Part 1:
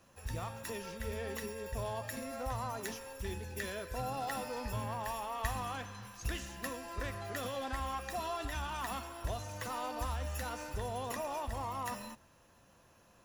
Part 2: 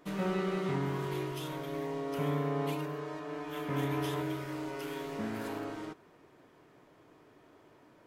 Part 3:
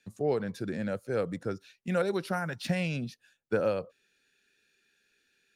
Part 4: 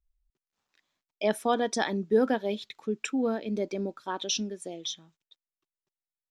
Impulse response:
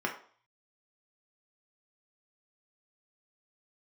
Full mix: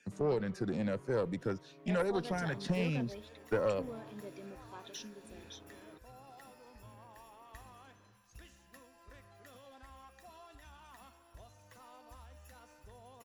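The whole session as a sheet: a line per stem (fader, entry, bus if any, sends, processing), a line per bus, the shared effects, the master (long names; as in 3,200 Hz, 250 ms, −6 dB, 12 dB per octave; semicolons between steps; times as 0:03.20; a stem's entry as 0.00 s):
−15.5 dB, 2.10 s, no send, no processing
−11.5 dB, 0.05 s, no send, parametric band 8,500 Hz −9.5 dB 2.2 octaves; automatic gain control gain up to 5 dB; automatic ducking −12 dB, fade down 0.60 s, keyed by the third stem
0.0 dB, 0.00 s, no send, low-pass filter 7,500 Hz 12 dB per octave; auto-filter notch saw down 2 Hz 770–4,200 Hz; multiband upward and downward compressor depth 40%
−15.5 dB, 0.65 s, no send, no processing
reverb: not used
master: tube saturation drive 22 dB, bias 0.45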